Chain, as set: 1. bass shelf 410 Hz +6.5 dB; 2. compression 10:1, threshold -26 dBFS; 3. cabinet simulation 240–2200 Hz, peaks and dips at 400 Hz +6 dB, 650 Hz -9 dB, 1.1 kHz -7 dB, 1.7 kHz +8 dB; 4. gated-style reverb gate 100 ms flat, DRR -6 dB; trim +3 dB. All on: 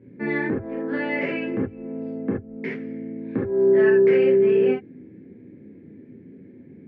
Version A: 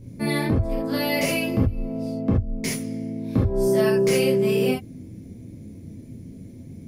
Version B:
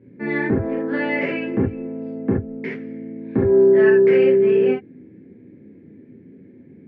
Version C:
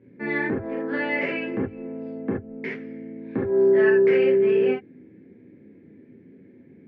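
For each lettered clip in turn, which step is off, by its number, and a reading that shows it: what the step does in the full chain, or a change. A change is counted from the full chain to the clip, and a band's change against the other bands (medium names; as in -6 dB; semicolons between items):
3, 125 Hz band +11.0 dB; 2, mean gain reduction 2.5 dB; 1, 2 kHz band +3.0 dB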